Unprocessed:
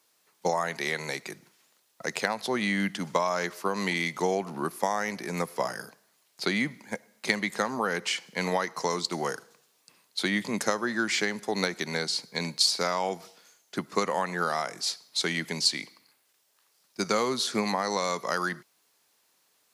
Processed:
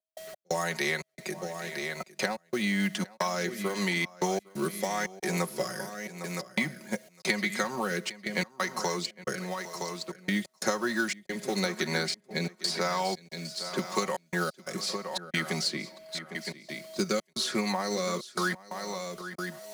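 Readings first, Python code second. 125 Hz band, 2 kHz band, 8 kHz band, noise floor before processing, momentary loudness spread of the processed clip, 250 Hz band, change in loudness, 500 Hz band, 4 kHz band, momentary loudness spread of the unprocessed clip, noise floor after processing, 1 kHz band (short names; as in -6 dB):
+1.5 dB, -1.0 dB, -1.5 dB, -69 dBFS, 8 LU, 0.0 dB, -3.0 dB, -2.0 dB, -3.5 dB, 10 LU, -66 dBFS, -3.5 dB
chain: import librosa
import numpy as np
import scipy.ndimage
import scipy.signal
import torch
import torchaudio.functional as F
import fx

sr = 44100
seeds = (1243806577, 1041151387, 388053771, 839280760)

p1 = x + 10.0 ** (-47.0 / 20.0) * np.sin(2.0 * np.pi * 640.0 * np.arange(len(x)) / sr)
p2 = p1 + 10.0 ** (-13.0 / 20.0) * np.pad(p1, (int(967 * sr / 1000.0), 0))[:len(p1)]
p3 = fx.rotary(p2, sr, hz=0.9)
p4 = fx.high_shelf(p3, sr, hz=4500.0, db=3.5)
p5 = fx.quant_companded(p4, sr, bits=4)
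p6 = p4 + F.gain(torch.from_numpy(p5), -9.0).numpy()
p7 = fx.step_gate(p6, sr, bpm=89, pattern='.x.xxx.xxxxx', floor_db=-60.0, edge_ms=4.5)
p8 = p7 + 0.7 * np.pad(p7, (int(5.4 * sr / 1000.0), 0))[:len(p7)]
p9 = p8 + fx.echo_single(p8, sr, ms=806, db=-22.5, dry=0)
p10 = fx.band_squash(p9, sr, depth_pct=70)
y = F.gain(torch.from_numpy(p10), -3.5).numpy()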